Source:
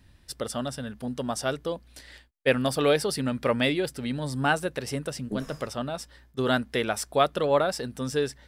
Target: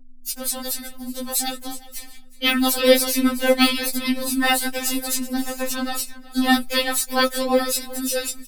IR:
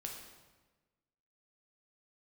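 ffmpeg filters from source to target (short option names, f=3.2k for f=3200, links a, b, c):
-filter_complex "[0:a]highshelf=f=2.1k:g=10,bandreject=f=3.2k:w=16,agate=range=-37dB:threshold=-41dB:ratio=16:detection=peak,equalizer=f=730:t=o:w=2:g=-4,acrossover=split=4500[a][b];[a]dynaudnorm=f=370:g=11:m=14dB[c];[c][b]amix=inputs=2:normalize=0,aeval=exprs='val(0)+0.00447*(sin(2*PI*50*n/s)+sin(2*PI*2*50*n/s)/2+sin(2*PI*3*50*n/s)/3+sin(2*PI*4*50*n/s)/4+sin(2*PI*5*50*n/s)/5)':c=same,asplit=2[d][e];[e]aecho=0:1:368|736:0.119|0.0226[f];[d][f]amix=inputs=2:normalize=0,deesser=0.4,afreqshift=-62,aexciter=amount=4.1:drive=3.6:freq=7.2k,asplit=4[g][h][i][j];[h]asetrate=22050,aresample=44100,atempo=2,volume=-7dB[k];[i]asetrate=55563,aresample=44100,atempo=0.793701,volume=-4dB[l];[j]asetrate=58866,aresample=44100,atempo=0.749154,volume=-2dB[m];[g][k][l][m]amix=inputs=4:normalize=0,afftfilt=real='re*3.46*eq(mod(b,12),0)':imag='im*3.46*eq(mod(b,12),0)':win_size=2048:overlap=0.75,volume=-1dB"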